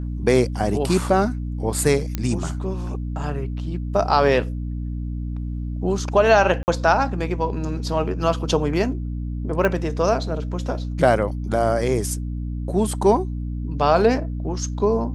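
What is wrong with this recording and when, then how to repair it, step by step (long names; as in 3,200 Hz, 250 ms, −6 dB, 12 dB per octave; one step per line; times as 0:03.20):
mains hum 60 Hz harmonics 5 −27 dBFS
0:02.15: click −10 dBFS
0:06.63–0:06.68: drop-out 49 ms
0:09.65: click −9 dBFS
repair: click removal
hum removal 60 Hz, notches 5
repair the gap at 0:06.63, 49 ms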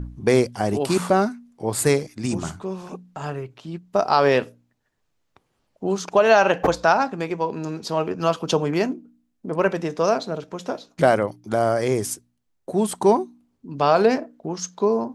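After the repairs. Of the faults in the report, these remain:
none of them is left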